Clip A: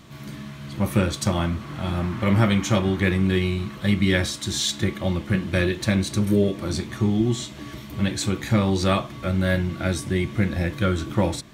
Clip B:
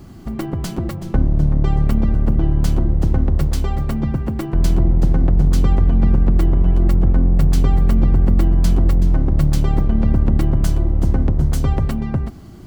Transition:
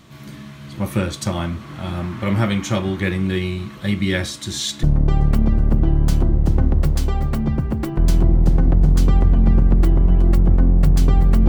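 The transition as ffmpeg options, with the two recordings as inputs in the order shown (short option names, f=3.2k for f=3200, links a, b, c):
-filter_complex "[0:a]apad=whole_dur=11.48,atrim=end=11.48,atrim=end=4.832[a];[1:a]atrim=start=1.388:end=8.04[b];[a][b]acrossfade=d=0.004:c1=hsin:c2=hsin"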